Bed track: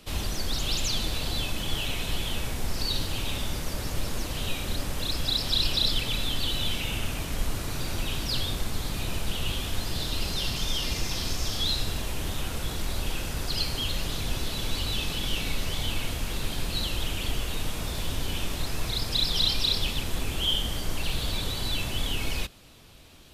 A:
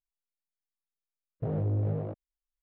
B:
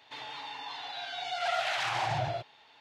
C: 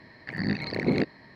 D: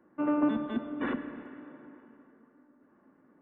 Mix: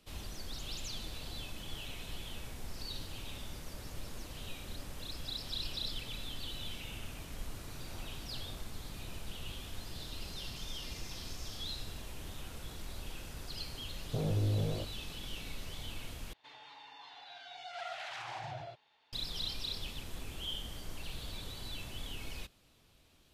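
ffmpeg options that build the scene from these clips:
ffmpeg -i bed.wav -i cue0.wav -i cue1.wav -filter_complex "[1:a]asplit=2[link_01][link_02];[0:a]volume=-14dB[link_03];[link_01]highpass=frequency=880:width=0.5412,highpass=frequency=880:width=1.3066[link_04];[link_03]asplit=2[link_05][link_06];[link_05]atrim=end=16.334[link_07];[2:a]atrim=end=2.8,asetpts=PTS-STARTPTS,volume=-12dB[link_08];[link_06]atrim=start=19.126[link_09];[link_04]atrim=end=2.62,asetpts=PTS-STARTPTS,volume=-6dB,afade=type=in:duration=0.004:curve=hsin,afade=type=out:start_time=2.616:duration=0.004:curve=hsin,adelay=6480[link_10];[link_02]atrim=end=2.62,asetpts=PTS-STARTPTS,volume=-3dB,afade=type=in:duration=0.004:curve=hsin,afade=type=out:start_time=2.616:duration=0.004:curve=hsin,adelay=12710[link_11];[link_07][link_08]acrossfade=duration=0.004:curve1=hsin:curve2=hsin[link_12];[link_12][link_09]acrossfade=duration=0.004:curve1=hsin:curve2=hsin[link_13];[link_13][link_10][link_11]amix=inputs=3:normalize=0" out.wav

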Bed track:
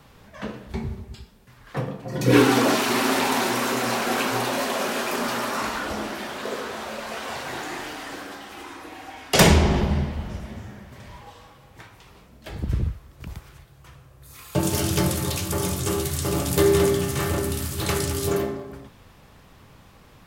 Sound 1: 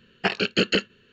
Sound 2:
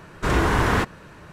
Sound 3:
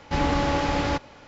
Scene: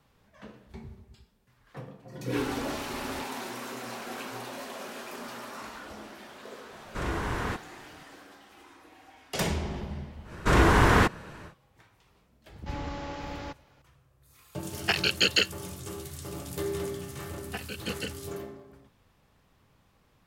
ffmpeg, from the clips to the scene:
ffmpeg -i bed.wav -i cue0.wav -i cue1.wav -i cue2.wav -filter_complex "[3:a]asplit=2[link_01][link_02];[2:a]asplit=2[link_03][link_04];[1:a]asplit=2[link_05][link_06];[0:a]volume=-14.5dB[link_07];[link_01]alimiter=limit=-16dB:level=0:latency=1:release=71[link_08];[link_05]aemphasis=mode=production:type=riaa[link_09];[link_06]aecho=1:1:4:0.65[link_10];[link_08]atrim=end=1.27,asetpts=PTS-STARTPTS,volume=-16dB,afade=type=in:duration=0.004:curve=hsin,afade=type=out:start_time=1.266:duration=0.004:curve=hsin,adelay=2250[link_11];[link_03]atrim=end=1.32,asetpts=PTS-STARTPTS,volume=-11.5dB,afade=type=in:duration=0.004:curve=hsin,afade=type=out:start_time=1.316:duration=0.004:curve=hsin,adelay=6720[link_12];[link_04]atrim=end=1.32,asetpts=PTS-STARTPTS,afade=type=in:duration=0.1,afade=type=out:start_time=1.22:duration=0.1,adelay=10230[link_13];[link_02]atrim=end=1.27,asetpts=PTS-STARTPTS,volume=-14dB,afade=type=in:duration=0.004:curve=hsin,afade=type=out:start_time=1.266:duration=0.004:curve=hsin,adelay=12550[link_14];[link_09]atrim=end=1.12,asetpts=PTS-STARTPTS,volume=-4dB,afade=type=in:duration=0.004:curve=hsin,afade=type=out:start_time=1.116:duration=0.004:curve=hsin,adelay=14640[link_15];[link_10]atrim=end=1.12,asetpts=PTS-STARTPTS,volume=-16dB,afade=type=in:duration=0.004:curve=hsin,afade=type=out:start_time=1.116:duration=0.004:curve=hsin,adelay=17290[link_16];[link_07][link_11][link_12][link_13][link_14][link_15][link_16]amix=inputs=7:normalize=0" out.wav

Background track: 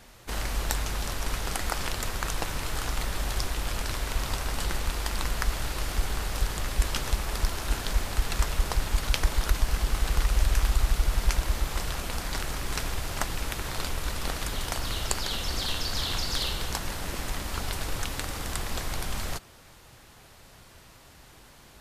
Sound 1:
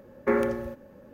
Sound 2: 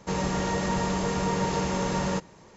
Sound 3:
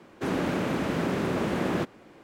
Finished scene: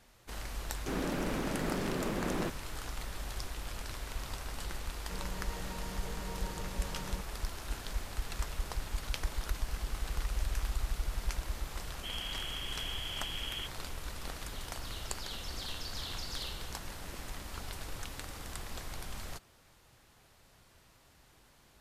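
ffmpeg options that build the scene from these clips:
ffmpeg -i bed.wav -i cue0.wav -i cue1.wav -i cue2.wav -filter_complex "[3:a]asplit=2[link_01][link_02];[0:a]volume=-10.5dB[link_03];[link_02]lowpass=frequency=3000:width_type=q:width=0.5098,lowpass=frequency=3000:width_type=q:width=0.6013,lowpass=frequency=3000:width_type=q:width=0.9,lowpass=frequency=3000:width_type=q:width=2.563,afreqshift=-3500[link_04];[link_01]atrim=end=2.23,asetpts=PTS-STARTPTS,volume=-7.5dB,afade=type=in:duration=0.004:curve=hsin,afade=type=out:start_time=2.226:duration=0.004:curve=hsin,adelay=650[link_05];[2:a]atrim=end=2.56,asetpts=PTS-STARTPTS,volume=-18dB,afade=type=in:duration=0.004:curve=hsin,afade=type=out:start_time=2.556:duration=0.004:curve=hsin,adelay=5020[link_06];[link_04]atrim=end=2.23,asetpts=PTS-STARTPTS,volume=-14dB,afade=type=in:duration=0.004:curve=hsin,afade=type=out:start_time=2.226:duration=0.004:curve=hsin,adelay=11820[link_07];[link_03][link_05][link_06][link_07]amix=inputs=4:normalize=0" out.wav

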